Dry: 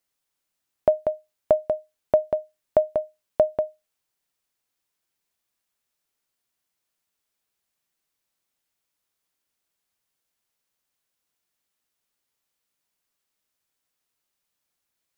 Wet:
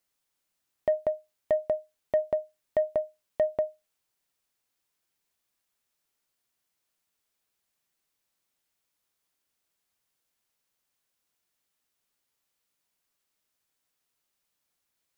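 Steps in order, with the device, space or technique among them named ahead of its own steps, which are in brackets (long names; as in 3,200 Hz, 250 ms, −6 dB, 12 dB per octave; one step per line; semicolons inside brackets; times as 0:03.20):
soft clipper into limiter (soft clipping −10 dBFS, distortion −18 dB; brickwall limiter −18 dBFS, peak gain reduction 7 dB)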